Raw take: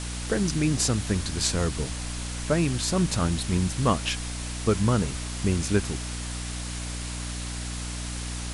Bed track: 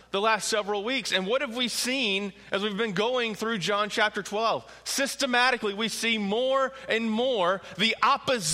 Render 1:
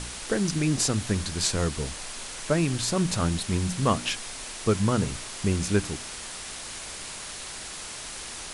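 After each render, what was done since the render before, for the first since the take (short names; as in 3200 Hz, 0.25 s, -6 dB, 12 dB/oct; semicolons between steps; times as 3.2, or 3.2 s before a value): de-hum 60 Hz, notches 5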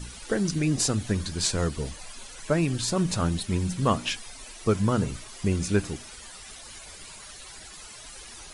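denoiser 13 dB, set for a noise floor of -39 dBFS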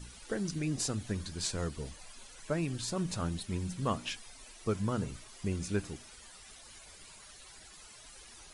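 gain -9 dB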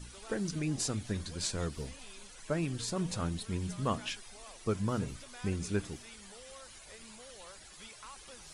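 add bed track -29 dB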